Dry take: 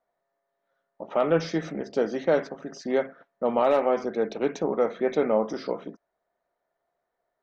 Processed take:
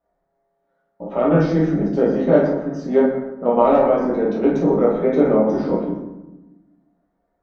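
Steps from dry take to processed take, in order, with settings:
spectral tilt −2.5 dB per octave
convolution reverb RT60 1.0 s, pre-delay 8 ms, DRR −7 dB
level −3 dB

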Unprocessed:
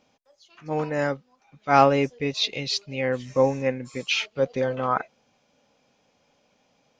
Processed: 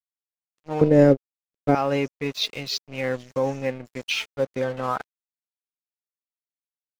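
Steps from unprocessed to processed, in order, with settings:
dead-zone distortion −39.5 dBFS
brickwall limiter −13 dBFS, peak gain reduction 9.5 dB
0:00.81–0:01.75: low shelf with overshoot 670 Hz +13.5 dB, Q 1.5

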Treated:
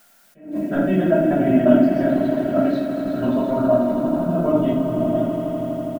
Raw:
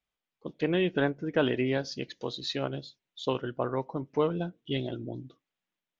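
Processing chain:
slices reordered back to front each 87 ms, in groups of 4
echo that builds up and dies away 82 ms, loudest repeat 5, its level −13.5 dB
in parallel at −0.5 dB: downward compressor, threshold −37 dBFS, peak gain reduction 15.5 dB
on the sum: bass and treble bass +1 dB, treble −11 dB
comb filter 3.1 ms, depth 69%
rectangular room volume 630 cubic metres, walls furnished, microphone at 5.9 metres
background noise blue −37 dBFS
high-shelf EQ 2,800 Hz −8.5 dB
hollow resonant body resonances 210/640/1,400 Hz, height 15 dB, ringing for 25 ms
level that may rise only so fast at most 140 dB per second
level −10.5 dB

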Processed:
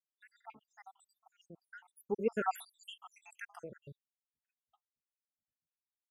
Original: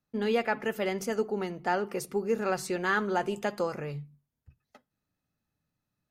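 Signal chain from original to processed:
time-frequency cells dropped at random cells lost 85%
source passing by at 0:02.65, 6 m/s, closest 1.4 metres
Butterworth band-reject 4,300 Hz, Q 3.5
level +4 dB

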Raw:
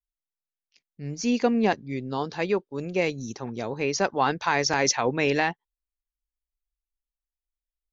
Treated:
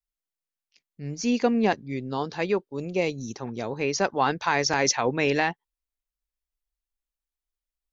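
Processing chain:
0:02.70–0:03.21: parametric band 1,600 Hz −10 dB 0.57 octaves

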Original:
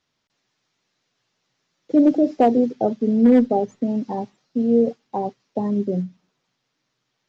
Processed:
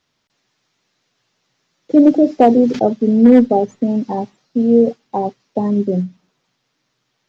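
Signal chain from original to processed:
0:02.36–0:02.84: level that may fall only so fast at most 89 dB per second
level +5.5 dB

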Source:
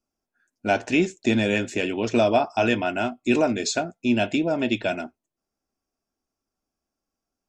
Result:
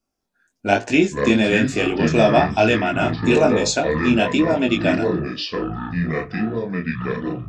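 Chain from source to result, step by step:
chorus effect 1.1 Hz, delay 18.5 ms, depth 5.1 ms
delay with pitch and tempo change per echo 202 ms, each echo −6 semitones, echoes 2, each echo −6 dB
level +7.5 dB

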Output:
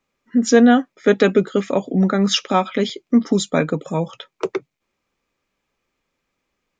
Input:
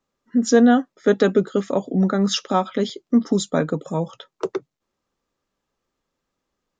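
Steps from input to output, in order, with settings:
parametric band 2,400 Hz +12 dB 0.51 octaves
notch filter 2,700 Hz, Q 20
level +2 dB

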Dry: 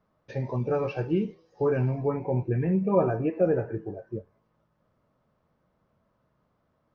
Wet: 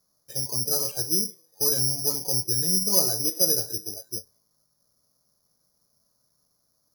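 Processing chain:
low-pass filter 2,600 Hz
bad sample-rate conversion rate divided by 8×, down filtered, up zero stuff
level −8 dB

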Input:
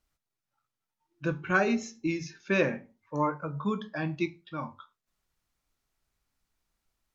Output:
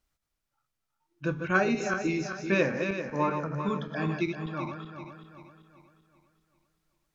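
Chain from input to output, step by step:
feedback delay that plays each chunk backwards 194 ms, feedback 65%, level −6 dB

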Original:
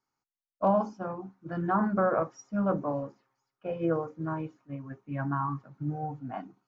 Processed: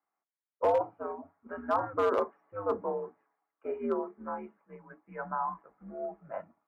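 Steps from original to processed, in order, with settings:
single-sideband voice off tune −100 Hz 400–2,300 Hz
gain into a clipping stage and back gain 19.5 dB

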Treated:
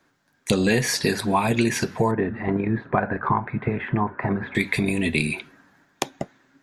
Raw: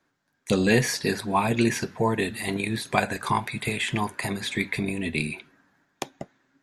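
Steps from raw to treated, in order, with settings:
0:02.11–0:04.55: Chebyshev low-pass filter 1,500 Hz, order 3
downward compressor 3 to 1, threshold −26 dBFS, peak gain reduction 9 dB
level +7.5 dB

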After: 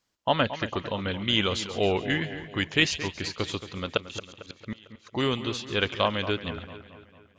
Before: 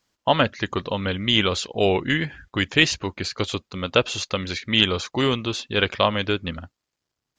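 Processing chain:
0:03.97–0:05.07: gate with flip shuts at −17 dBFS, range −31 dB
echo with a time of its own for lows and highs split 2,600 Hz, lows 225 ms, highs 138 ms, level −12 dB
level −5 dB

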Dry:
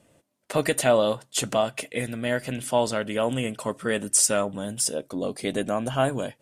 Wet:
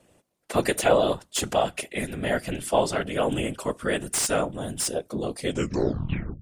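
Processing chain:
turntable brake at the end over 1.01 s
random phases in short frames
slew-rate limiting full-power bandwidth 510 Hz

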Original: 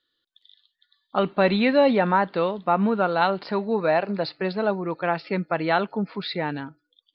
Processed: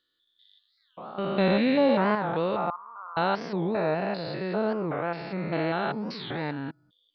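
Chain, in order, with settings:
spectrum averaged block by block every 200 ms
0:02.70–0:03.17: flat-topped band-pass 1,100 Hz, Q 4.2
wow of a warped record 45 rpm, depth 250 cents

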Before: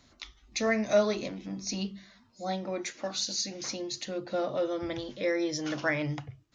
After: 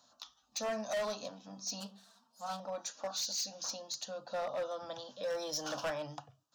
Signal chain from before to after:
0:01.80–0:02.60: lower of the sound and its delayed copy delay 4.4 ms
high-pass filter 320 Hz 12 dB per octave
0:05.30–0:05.90: leveller curve on the samples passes 1
phaser with its sweep stopped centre 880 Hz, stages 4
hard clipping −32 dBFS, distortion −7 dB

